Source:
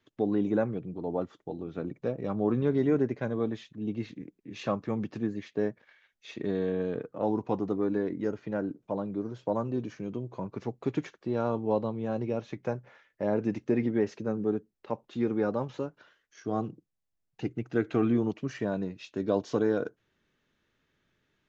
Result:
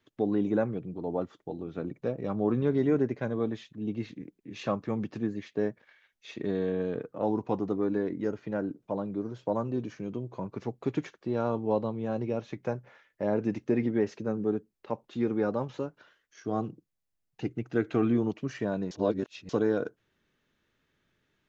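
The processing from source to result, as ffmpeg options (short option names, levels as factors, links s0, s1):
-filter_complex "[0:a]asplit=3[s0][s1][s2];[s0]atrim=end=18.912[s3];[s1]atrim=start=18.908:end=19.492,asetpts=PTS-STARTPTS,areverse[s4];[s2]atrim=start=19.488[s5];[s3][s4]acrossfade=d=0.004:c1=hsin:c2=hsin[s6];[s6][s5]acrossfade=d=0.004:c1=hsin:c2=hsin"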